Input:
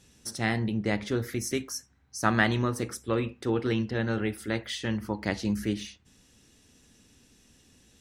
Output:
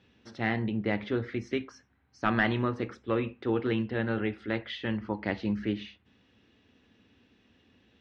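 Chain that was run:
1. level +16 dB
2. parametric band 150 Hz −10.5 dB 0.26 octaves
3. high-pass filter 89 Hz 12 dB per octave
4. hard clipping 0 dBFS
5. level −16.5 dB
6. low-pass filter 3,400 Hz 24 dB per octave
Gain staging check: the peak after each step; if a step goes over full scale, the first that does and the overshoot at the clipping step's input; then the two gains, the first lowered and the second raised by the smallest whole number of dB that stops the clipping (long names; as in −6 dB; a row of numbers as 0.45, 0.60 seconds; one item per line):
+8.0, +8.0, +9.0, 0.0, −16.5, −15.0 dBFS
step 1, 9.0 dB
step 1 +7 dB, step 5 −7.5 dB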